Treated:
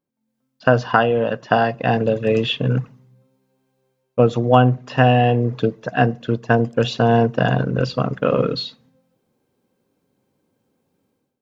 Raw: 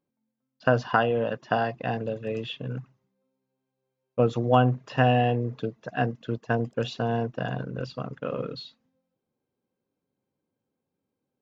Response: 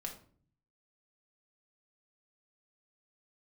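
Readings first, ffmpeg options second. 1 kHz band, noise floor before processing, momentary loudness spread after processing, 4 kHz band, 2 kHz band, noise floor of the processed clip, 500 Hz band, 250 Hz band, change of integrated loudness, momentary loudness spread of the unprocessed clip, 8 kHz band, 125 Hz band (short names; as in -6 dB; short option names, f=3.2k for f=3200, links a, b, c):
+7.5 dB, -84 dBFS, 8 LU, +10.5 dB, +8.0 dB, -74 dBFS, +9.0 dB, +9.0 dB, +8.5 dB, 13 LU, n/a, +9.0 dB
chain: -filter_complex "[0:a]dynaudnorm=f=130:g=5:m=15dB,asplit=2[a][b];[1:a]atrim=start_sample=2205,asetrate=40131,aresample=44100[c];[b][c]afir=irnorm=-1:irlink=0,volume=-18dB[d];[a][d]amix=inputs=2:normalize=0,volume=-1.5dB"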